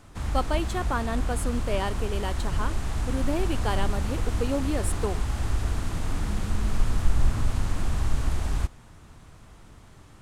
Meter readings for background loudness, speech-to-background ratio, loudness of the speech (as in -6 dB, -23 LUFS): -30.5 LUFS, -1.0 dB, -31.5 LUFS